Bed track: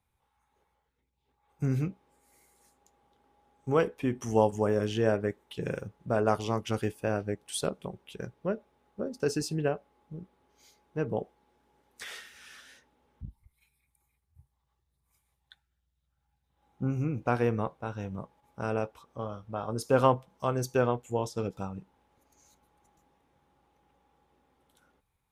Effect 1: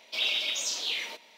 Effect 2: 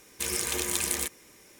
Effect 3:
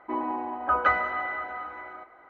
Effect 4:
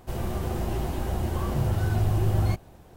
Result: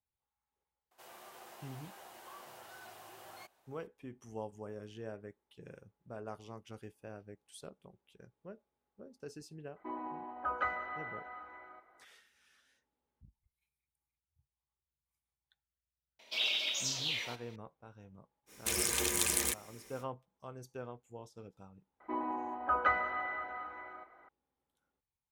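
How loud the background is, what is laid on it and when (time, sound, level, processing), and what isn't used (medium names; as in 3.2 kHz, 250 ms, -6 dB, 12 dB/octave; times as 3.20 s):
bed track -18.5 dB
0.91 s: add 4 -12.5 dB + high-pass 850 Hz
9.76 s: add 3 -12 dB
16.19 s: add 1 -4.5 dB
18.46 s: add 2 -2.5 dB, fades 0.05 s
22.00 s: add 3 -7 dB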